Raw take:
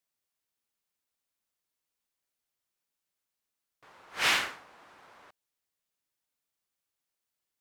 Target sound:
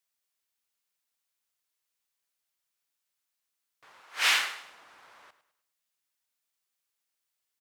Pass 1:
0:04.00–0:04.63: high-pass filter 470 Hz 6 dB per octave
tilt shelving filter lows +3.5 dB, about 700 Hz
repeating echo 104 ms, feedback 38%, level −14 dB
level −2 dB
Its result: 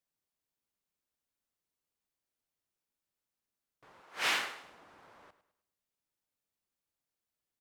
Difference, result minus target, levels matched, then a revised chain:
500 Hz band +9.0 dB
0:04.00–0:04.63: high-pass filter 470 Hz 6 dB per octave
tilt shelving filter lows −5 dB, about 700 Hz
repeating echo 104 ms, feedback 38%, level −14 dB
level −2 dB

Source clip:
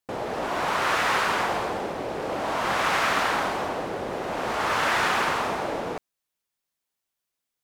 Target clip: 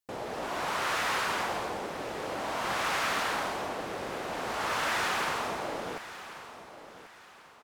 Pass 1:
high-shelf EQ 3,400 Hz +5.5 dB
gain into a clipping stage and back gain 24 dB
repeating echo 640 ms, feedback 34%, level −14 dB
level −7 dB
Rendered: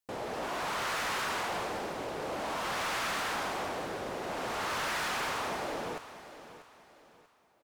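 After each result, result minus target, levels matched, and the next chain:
echo 448 ms early; gain into a clipping stage and back: distortion +12 dB
high-shelf EQ 3,400 Hz +5.5 dB
gain into a clipping stage and back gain 24 dB
repeating echo 1,088 ms, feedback 34%, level −14 dB
level −7 dB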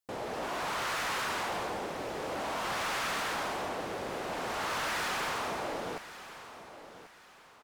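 gain into a clipping stage and back: distortion +12 dB
high-shelf EQ 3,400 Hz +5.5 dB
gain into a clipping stage and back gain 17 dB
repeating echo 1,088 ms, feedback 34%, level −14 dB
level −7 dB

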